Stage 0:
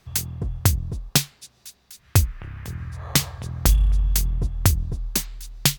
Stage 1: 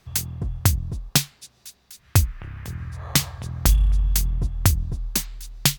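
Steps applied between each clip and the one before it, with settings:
dynamic equaliser 450 Hz, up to −4 dB, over −45 dBFS, Q 2.1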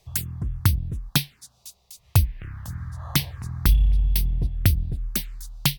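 phaser swept by the level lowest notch 240 Hz, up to 1,300 Hz, full sweep at −20 dBFS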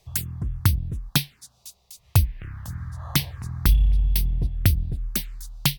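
no processing that can be heard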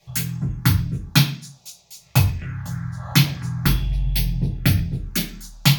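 convolution reverb RT60 0.40 s, pre-delay 3 ms, DRR −7 dB
level −4 dB

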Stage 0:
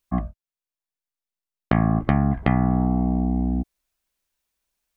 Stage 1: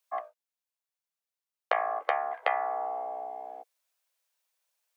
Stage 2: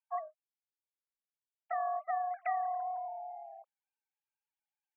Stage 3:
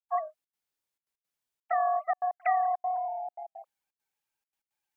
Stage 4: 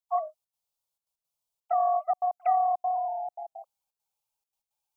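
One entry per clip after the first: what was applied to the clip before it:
Chebyshev high-pass filter 480 Hz, order 5
three sine waves on the formant tracks; level −4.5 dB
gate pattern ".xxxx.xxxxx.x" 169 BPM −60 dB; level +7.5 dB
phaser with its sweep stopped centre 740 Hz, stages 4; level +2.5 dB

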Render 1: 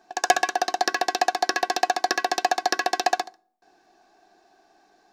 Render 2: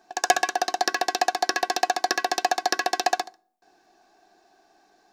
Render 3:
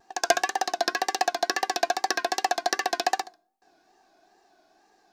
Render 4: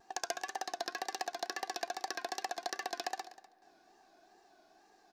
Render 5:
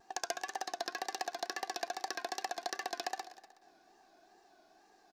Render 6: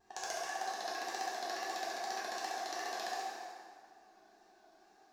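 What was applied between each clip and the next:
high-shelf EQ 6,200 Hz +4 dB; level −1 dB
tape wow and flutter 93 cents; level −2 dB
downward compressor 5 to 1, threshold −33 dBFS, peak gain reduction 16.5 dB; single-tap delay 248 ms −18 dB; on a send at −20 dB: convolution reverb RT60 4.0 s, pre-delay 3 ms; on the sum: level −2.5 dB
single-tap delay 371 ms −23 dB
dense smooth reverb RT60 2 s, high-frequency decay 0.7×, DRR −7 dB; level −7.5 dB

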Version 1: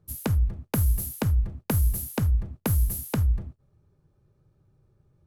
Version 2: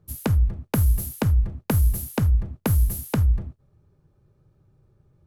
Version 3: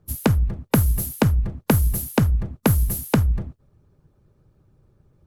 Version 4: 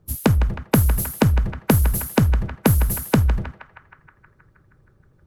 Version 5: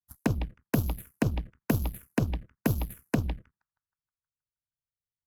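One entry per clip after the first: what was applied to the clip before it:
high-shelf EQ 4,900 Hz −4 dB; level +3.5 dB
harmonic and percussive parts rebalanced percussive +8 dB; level −1.5 dB
feedback echo with a band-pass in the loop 158 ms, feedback 75%, band-pass 1,500 Hz, level −8 dB; level +1.5 dB
harmonic generator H 7 −17 dB, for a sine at −3 dBFS; phaser swept by the level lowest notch 430 Hz, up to 1,900 Hz, full sweep at −14 dBFS; level −8 dB

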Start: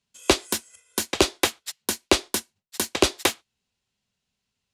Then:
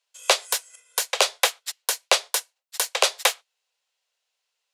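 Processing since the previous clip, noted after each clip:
Butterworth high-pass 460 Hz 72 dB per octave
level +2.5 dB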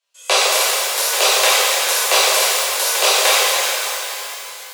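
reverb with rising layers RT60 3.1 s, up +12 semitones, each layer −8 dB, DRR −11.5 dB
level −2.5 dB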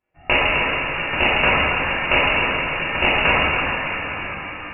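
camcorder AGC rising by 6.5 dB per second
voice inversion scrambler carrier 3,300 Hz

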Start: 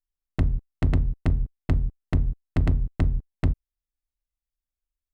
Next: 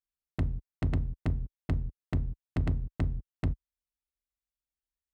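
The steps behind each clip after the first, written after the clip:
high-pass filter 45 Hz 12 dB per octave
level −6 dB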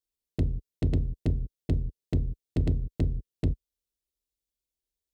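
drawn EQ curve 230 Hz 0 dB, 450 Hz +5 dB, 780 Hz −8 dB, 1,300 Hz −15 dB, 3,700 Hz +1 dB
level +3 dB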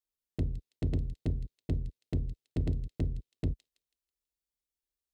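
delay with a high-pass on its return 163 ms, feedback 36%, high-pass 4,000 Hz, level −8 dB
level −5 dB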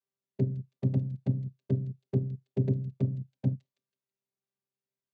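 channel vocoder with a chord as carrier bare fifth, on C3
level +9 dB

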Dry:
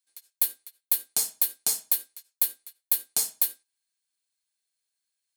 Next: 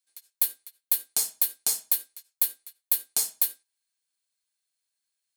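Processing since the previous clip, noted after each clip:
low-shelf EQ 410 Hz −4 dB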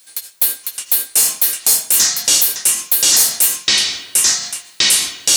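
power curve on the samples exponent 0.7
delay with pitch and tempo change per echo 532 ms, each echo −7 semitones, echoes 2
boost into a limiter +12.5 dB
level −1 dB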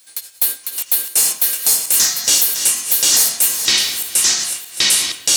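feedback delay that plays each chunk backwards 310 ms, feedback 51%, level −9 dB
level −1.5 dB

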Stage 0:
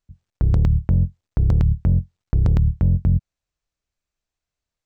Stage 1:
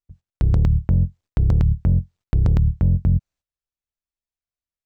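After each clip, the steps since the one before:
noise gate −48 dBFS, range −13 dB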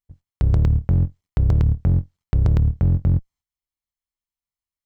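lower of the sound and its delayed copy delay 0.96 ms

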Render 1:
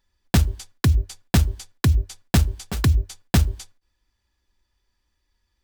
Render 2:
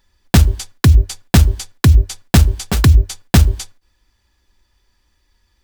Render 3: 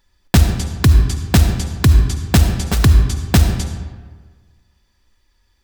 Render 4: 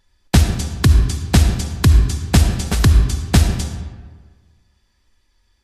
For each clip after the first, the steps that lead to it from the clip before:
boost into a limiter +12 dB; level −1 dB
comb and all-pass reverb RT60 1.5 s, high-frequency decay 0.6×, pre-delay 30 ms, DRR 6 dB; level −1.5 dB
level −1 dB; Ogg Vorbis 32 kbit/s 32,000 Hz

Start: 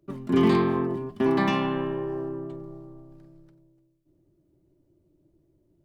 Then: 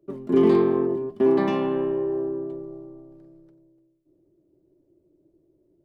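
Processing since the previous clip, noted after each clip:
parametric band 430 Hz +13.5 dB 1.6 octaves
level −7 dB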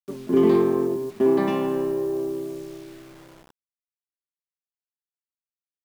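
bit reduction 8 bits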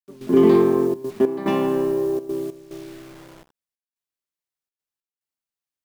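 gate pattern "..xxxxxxx.xx" 144 BPM −12 dB
level +3.5 dB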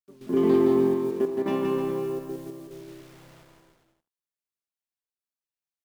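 bouncing-ball delay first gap 170 ms, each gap 0.8×, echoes 5
level −8 dB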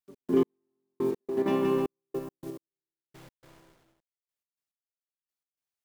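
gate pattern "x.x....x.xxxx.." 105 BPM −60 dB

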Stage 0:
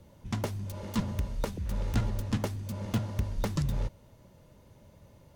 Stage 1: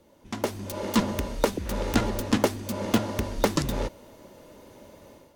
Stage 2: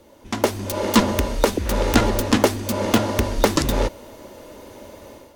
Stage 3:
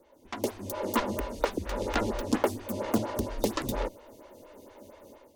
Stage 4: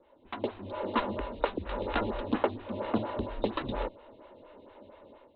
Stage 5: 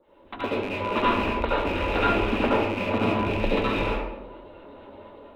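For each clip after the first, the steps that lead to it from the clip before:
low shelf with overshoot 200 Hz −11 dB, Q 1.5; automatic gain control gain up to 11 dB
parametric band 160 Hz −9 dB 0.55 octaves; boost into a limiter +10 dB; level −1 dB
phaser with staggered stages 4.3 Hz; level −7.5 dB
Chebyshev low-pass with heavy ripple 4,000 Hz, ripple 3 dB
loose part that buzzes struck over −40 dBFS, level −25 dBFS; convolution reverb RT60 0.90 s, pre-delay 66 ms, DRR −7.5 dB

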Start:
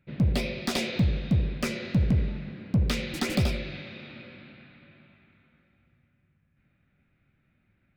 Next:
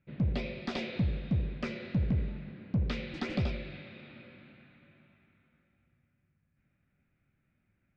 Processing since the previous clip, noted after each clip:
Bessel low-pass filter 3,300 Hz, order 4
level −6 dB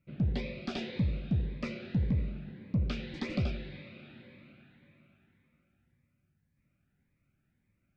phaser whose notches keep moving one way rising 1.8 Hz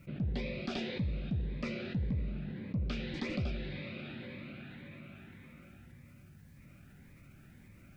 envelope flattener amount 50%
level −5.5 dB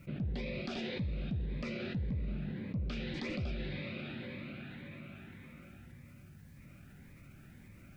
brickwall limiter −31.5 dBFS, peak gain reduction 6.5 dB
level +1.5 dB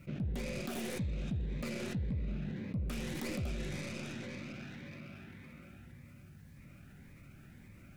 stylus tracing distortion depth 0.37 ms

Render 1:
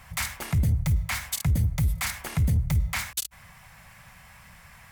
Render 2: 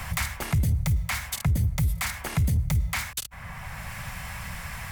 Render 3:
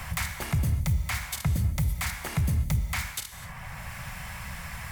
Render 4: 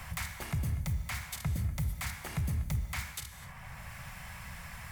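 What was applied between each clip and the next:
multiband upward and downward compressor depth 70%
reverb whose tail is shaped and stops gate 280 ms flat, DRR 8.5 dB; level −2.5 dB
bucket-brigade delay 242 ms, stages 4,096, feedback 60%, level −15.5 dB; level −7 dB

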